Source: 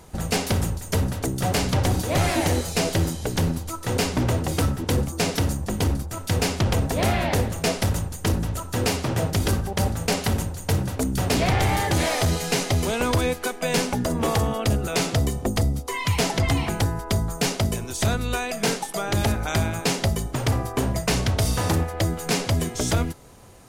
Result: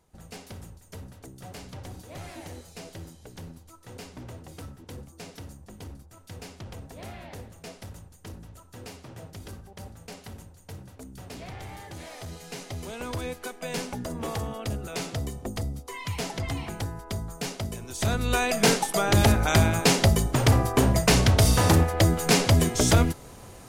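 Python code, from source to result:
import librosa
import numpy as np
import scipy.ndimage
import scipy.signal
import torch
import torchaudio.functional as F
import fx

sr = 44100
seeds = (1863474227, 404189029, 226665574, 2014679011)

y = fx.gain(x, sr, db=fx.line((12.04, -19.5), (13.39, -9.5), (17.75, -9.5), (18.43, 3.0)))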